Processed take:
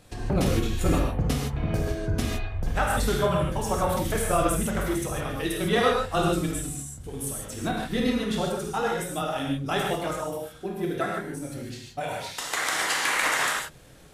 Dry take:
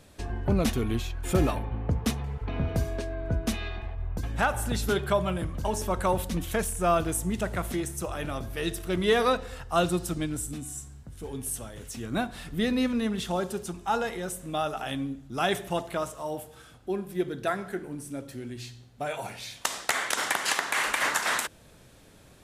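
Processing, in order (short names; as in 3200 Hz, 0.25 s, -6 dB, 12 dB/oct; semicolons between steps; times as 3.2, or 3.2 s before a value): granular stretch 0.63×, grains 51 ms; non-linear reverb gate 0.18 s flat, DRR -2 dB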